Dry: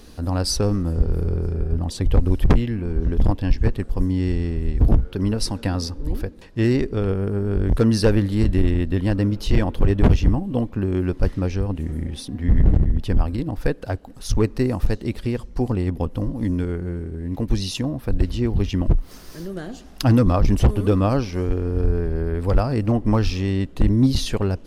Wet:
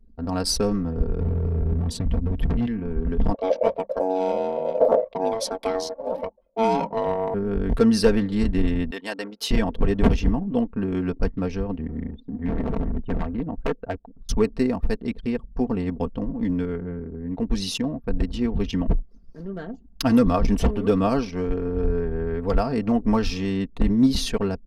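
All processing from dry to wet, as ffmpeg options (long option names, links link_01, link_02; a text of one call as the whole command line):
ffmpeg -i in.wav -filter_complex "[0:a]asettb=1/sr,asplit=3[link_01][link_02][link_03];[link_01]atrim=end=1.204[link_04];[link_02]atrim=start=1.2:end=2.67,asetpts=PTS-STARTPTS,afade=type=in:duration=0.004:curve=qsin,afade=type=out:start_time=1.466:duration=0.004:curve=qsin,equalizer=frequency=100:width_type=o:width=2.1:gain=13.5,acompressor=threshold=-11dB:ratio=10:attack=3.2:release=140:knee=1:detection=peak,volume=12dB,asoftclip=hard,volume=-12dB[link_05];[link_03]atrim=start=2.666[link_06];[link_04][link_05]acrossfade=duration=0.004:curve1=hsin:curve2=qsin[link_07];[link_07][link_06]acrossfade=duration=0.004:curve1=qsin:curve2=hsin,asettb=1/sr,asplit=3[link_08][link_09][link_10];[link_08]atrim=end=3.344[link_11];[link_09]atrim=start=3.34:end=7.34,asetpts=PTS-STARTPTS,afade=type=in:duration=0.004:curve=qsin,afade=type=out:start_time=3.996:duration=0.004:curve=qsin,aeval=exprs='val(0)*sin(2*PI*560*n/s)':channel_layout=same,bandreject=frequency=50:width_type=h:width=6,bandreject=frequency=100:width_type=h:width=6,bandreject=frequency=150:width_type=h:width=6,bandreject=frequency=200:width_type=h:width=6[link_12];[link_10]atrim=start=7.336[link_13];[link_11][link_12]acrossfade=duration=0.004:curve1=hsin:curve2=qsin[link_14];[link_14][link_13]acrossfade=duration=0.004:curve1=qsin:curve2=hsin,asettb=1/sr,asplit=3[link_15][link_16][link_17];[link_15]atrim=end=8.914[link_18];[link_16]atrim=start=8.91:end=9.51,asetpts=PTS-STARTPTS,afade=type=in:duration=0.004:curve=qsin,afade=type=out:start_time=0.596:duration=0.004:curve=qsin,highpass=530,acompressor=mode=upward:threshold=-40dB:ratio=2.5:attack=3.2:release=140:knee=2.83:detection=peak,highshelf=frequency=2400:gain=6.5[link_19];[link_17]atrim=start=9.506[link_20];[link_18][link_19]acrossfade=duration=0.004:curve1=hsin:curve2=qsin[link_21];[link_21][link_20]acrossfade=duration=0.004:curve1=qsin:curve2=hsin,asettb=1/sr,asplit=3[link_22][link_23][link_24];[link_22]atrim=end=12.114[link_25];[link_23]atrim=start=12.11:end=14.29,asetpts=PTS-STARTPTS,afade=type=in:duration=0.004:curve=qsin,afade=type=out:start_time=2.176:duration=0.004:curve=qsin,lowpass=2100,aeval=exprs='0.178*(abs(mod(val(0)/0.178+3,4)-2)-1)':channel_layout=same[link_26];[link_24]atrim=start=14.286[link_27];[link_25][link_26]acrossfade=duration=0.004:curve1=hsin:curve2=qsin[link_28];[link_28][link_27]acrossfade=duration=0.004:curve1=qsin:curve2=hsin,anlmdn=6.31,lowshelf=frequency=130:gain=-5.5,aecho=1:1:4.4:0.64,volume=-1.5dB" out.wav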